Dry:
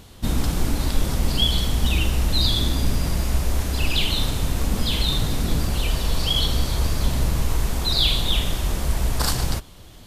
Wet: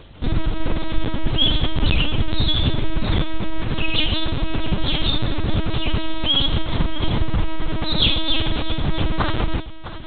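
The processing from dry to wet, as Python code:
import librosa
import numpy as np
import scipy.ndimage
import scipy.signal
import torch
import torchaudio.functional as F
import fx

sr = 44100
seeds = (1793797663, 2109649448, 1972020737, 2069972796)

p1 = x + fx.echo_feedback(x, sr, ms=654, feedback_pct=26, wet_db=-14.0, dry=0)
p2 = fx.lpc_vocoder(p1, sr, seeds[0], excitation='pitch_kept', order=8)
y = p2 * librosa.db_to_amplitude(3.0)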